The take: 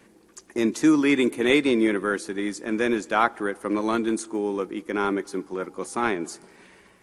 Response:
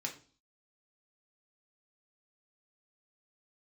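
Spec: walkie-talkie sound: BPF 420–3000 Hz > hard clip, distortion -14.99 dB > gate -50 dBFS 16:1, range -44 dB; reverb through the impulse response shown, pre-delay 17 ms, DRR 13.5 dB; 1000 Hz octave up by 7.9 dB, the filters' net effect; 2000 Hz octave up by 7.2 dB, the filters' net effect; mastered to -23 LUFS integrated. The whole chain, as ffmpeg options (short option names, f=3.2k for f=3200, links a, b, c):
-filter_complex "[0:a]equalizer=f=1k:t=o:g=8.5,equalizer=f=2k:t=o:g=7,asplit=2[a][b];[1:a]atrim=start_sample=2205,adelay=17[c];[b][c]afir=irnorm=-1:irlink=0,volume=-14dB[d];[a][d]amix=inputs=2:normalize=0,highpass=420,lowpass=3k,asoftclip=type=hard:threshold=-8dB,agate=range=-44dB:threshold=-50dB:ratio=16,volume=-0.5dB"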